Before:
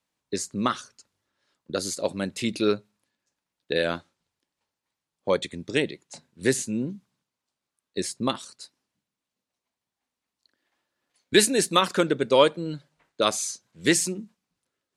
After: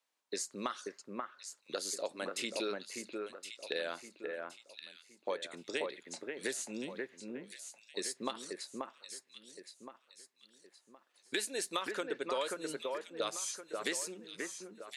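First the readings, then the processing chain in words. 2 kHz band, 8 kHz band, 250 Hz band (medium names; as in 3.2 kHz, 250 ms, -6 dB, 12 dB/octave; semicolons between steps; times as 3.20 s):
-10.5 dB, -10.5 dB, -16.0 dB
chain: high-pass 460 Hz 12 dB/octave; compression 5:1, threshold -32 dBFS, peak gain reduction 16.5 dB; echo whose repeats swap between lows and highs 534 ms, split 2.2 kHz, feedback 58%, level -3 dB; trim -2.5 dB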